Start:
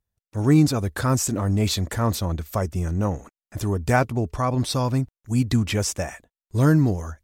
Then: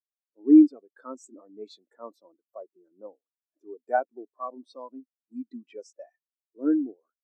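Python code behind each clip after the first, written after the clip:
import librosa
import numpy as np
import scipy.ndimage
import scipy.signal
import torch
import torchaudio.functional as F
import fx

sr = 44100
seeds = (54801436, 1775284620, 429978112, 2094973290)

y = scipy.signal.sosfilt(scipy.signal.butter(4, 290.0, 'highpass', fs=sr, output='sos'), x)
y = fx.spectral_expand(y, sr, expansion=2.5)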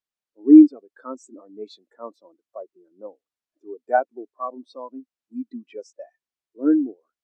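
y = fx.air_absorb(x, sr, metres=51.0)
y = y * librosa.db_to_amplitude(5.5)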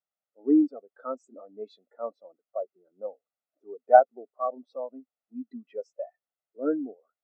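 y = fx.bandpass_q(x, sr, hz=550.0, q=0.61)
y = y + 0.76 * np.pad(y, (int(1.5 * sr / 1000.0), 0))[:len(y)]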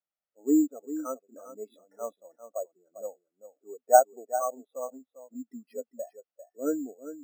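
y = x + 10.0 ** (-12.5 / 20.0) * np.pad(x, (int(398 * sr / 1000.0), 0))[:len(x)]
y = np.repeat(scipy.signal.resample_poly(y, 1, 6), 6)[:len(y)]
y = y * librosa.db_to_amplitude(-2.0)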